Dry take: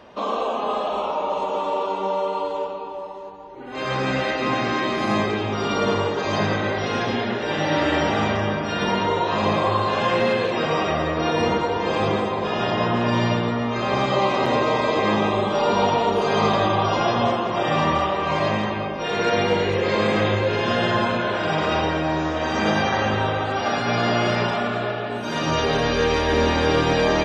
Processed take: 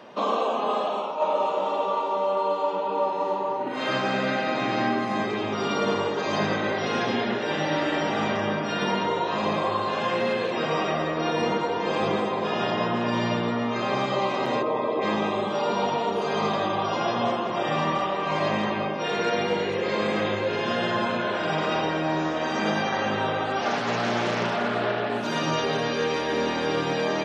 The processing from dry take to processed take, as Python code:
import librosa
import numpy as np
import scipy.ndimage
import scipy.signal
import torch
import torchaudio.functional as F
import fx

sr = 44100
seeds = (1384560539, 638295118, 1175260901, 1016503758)

y = fx.reverb_throw(x, sr, start_s=1.15, length_s=3.66, rt60_s=1.4, drr_db=-10.5)
y = fx.envelope_sharpen(y, sr, power=1.5, at=(14.61, 15.01), fade=0.02)
y = fx.doppler_dist(y, sr, depth_ms=0.41, at=(23.61, 25.27))
y = scipy.signal.sosfilt(scipy.signal.butter(4, 130.0, 'highpass', fs=sr, output='sos'), y)
y = fx.rider(y, sr, range_db=10, speed_s=0.5)
y = y * 10.0 ** (-6.0 / 20.0)